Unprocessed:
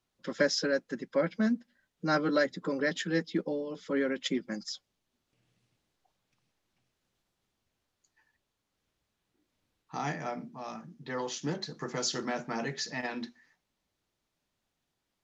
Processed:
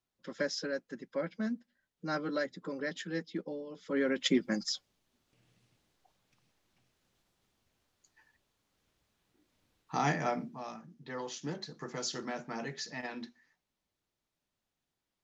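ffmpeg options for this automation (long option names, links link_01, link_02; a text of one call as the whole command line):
ffmpeg -i in.wav -af "volume=4dB,afade=type=in:start_time=3.79:duration=0.56:silence=0.281838,afade=type=out:start_time=10.29:duration=0.48:silence=0.354813" out.wav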